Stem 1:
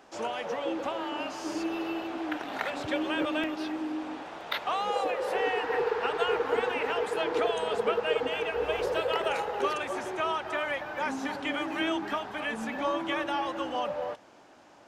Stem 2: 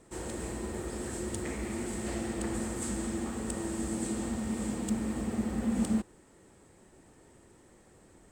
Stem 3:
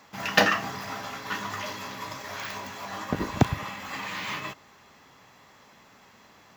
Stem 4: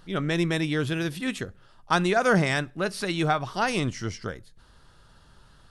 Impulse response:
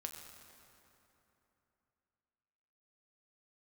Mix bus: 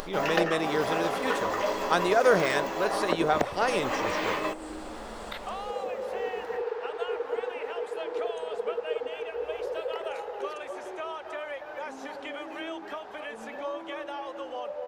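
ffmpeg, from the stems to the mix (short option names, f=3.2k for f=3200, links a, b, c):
-filter_complex "[0:a]adelay=800,volume=-9dB[a];[1:a]asplit=2[b][c];[c]afreqshift=-0.3[d];[b][d]amix=inputs=2:normalize=1,adelay=600,volume=-14.5dB[e];[2:a]equalizer=f=380:w=0.37:g=11,acompressor=threshold=-24dB:ratio=10,volume=-1.5dB[f];[3:a]acompressor=mode=upward:threshold=-33dB:ratio=2.5,volume=-3.5dB[g];[a][e][f][g]amix=inputs=4:normalize=0,equalizer=f=125:t=o:w=1:g=-11,equalizer=f=250:t=o:w=1:g=-4,equalizer=f=500:t=o:w=1:g=8,acompressor=mode=upward:threshold=-33dB:ratio=2.5"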